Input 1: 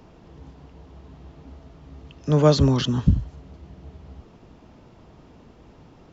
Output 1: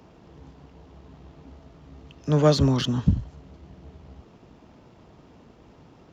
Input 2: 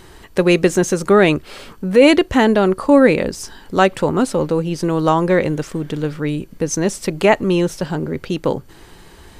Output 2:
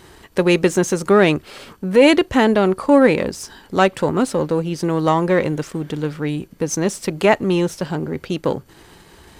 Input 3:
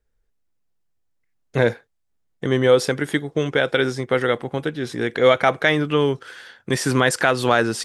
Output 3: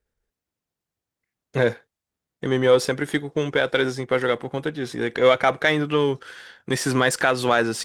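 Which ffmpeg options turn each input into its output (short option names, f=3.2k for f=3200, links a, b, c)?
-af "aeval=exprs='if(lt(val(0),0),0.708*val(0),val(0))':c=same,highpass=f=67:p=1"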